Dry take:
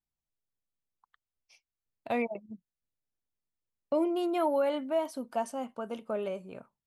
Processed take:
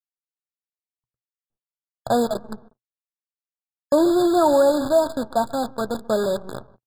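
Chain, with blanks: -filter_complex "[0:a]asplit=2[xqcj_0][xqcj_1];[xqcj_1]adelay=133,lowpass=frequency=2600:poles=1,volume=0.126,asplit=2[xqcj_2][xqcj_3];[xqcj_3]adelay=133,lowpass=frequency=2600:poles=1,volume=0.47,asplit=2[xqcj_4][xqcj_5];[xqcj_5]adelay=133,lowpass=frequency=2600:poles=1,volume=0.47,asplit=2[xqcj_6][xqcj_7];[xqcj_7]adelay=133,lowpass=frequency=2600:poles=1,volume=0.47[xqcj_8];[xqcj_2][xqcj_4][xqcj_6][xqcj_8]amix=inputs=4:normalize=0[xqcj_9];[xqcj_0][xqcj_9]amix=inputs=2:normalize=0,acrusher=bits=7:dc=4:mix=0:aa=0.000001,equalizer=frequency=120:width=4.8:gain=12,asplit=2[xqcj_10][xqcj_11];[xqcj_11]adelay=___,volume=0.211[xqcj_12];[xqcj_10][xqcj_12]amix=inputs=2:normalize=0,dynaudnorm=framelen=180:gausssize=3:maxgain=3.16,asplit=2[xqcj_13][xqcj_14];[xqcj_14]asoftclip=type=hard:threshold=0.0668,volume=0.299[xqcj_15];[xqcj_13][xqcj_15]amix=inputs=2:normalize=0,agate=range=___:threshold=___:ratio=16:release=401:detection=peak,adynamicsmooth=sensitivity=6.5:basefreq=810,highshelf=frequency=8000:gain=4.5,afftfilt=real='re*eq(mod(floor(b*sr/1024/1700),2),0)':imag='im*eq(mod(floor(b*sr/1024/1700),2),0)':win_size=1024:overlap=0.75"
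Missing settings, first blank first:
14, 0.0316, 0.00891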